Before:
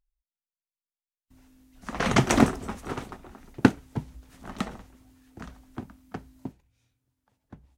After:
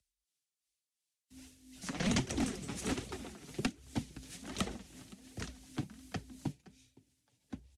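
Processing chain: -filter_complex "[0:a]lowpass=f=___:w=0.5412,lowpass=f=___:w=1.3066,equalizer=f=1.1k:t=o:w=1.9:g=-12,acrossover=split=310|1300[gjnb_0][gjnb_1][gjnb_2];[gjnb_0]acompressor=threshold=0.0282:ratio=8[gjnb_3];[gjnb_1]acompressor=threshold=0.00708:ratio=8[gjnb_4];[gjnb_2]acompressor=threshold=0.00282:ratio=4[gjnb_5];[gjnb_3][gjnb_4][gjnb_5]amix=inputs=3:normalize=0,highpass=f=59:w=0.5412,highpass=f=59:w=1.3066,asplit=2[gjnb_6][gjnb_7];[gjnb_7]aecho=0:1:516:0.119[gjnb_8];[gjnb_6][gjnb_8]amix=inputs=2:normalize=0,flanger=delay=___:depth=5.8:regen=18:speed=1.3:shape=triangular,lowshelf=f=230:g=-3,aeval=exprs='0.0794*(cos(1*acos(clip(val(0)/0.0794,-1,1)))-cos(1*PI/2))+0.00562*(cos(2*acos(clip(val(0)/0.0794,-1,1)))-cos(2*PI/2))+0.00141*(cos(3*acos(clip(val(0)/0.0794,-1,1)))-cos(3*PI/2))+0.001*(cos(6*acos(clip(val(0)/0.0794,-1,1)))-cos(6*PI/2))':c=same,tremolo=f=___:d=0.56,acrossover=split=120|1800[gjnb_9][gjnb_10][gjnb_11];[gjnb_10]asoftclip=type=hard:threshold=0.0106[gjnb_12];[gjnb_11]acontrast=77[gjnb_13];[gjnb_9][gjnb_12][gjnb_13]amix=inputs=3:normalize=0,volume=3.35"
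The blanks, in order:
11k, 11k, 1.5, 2.8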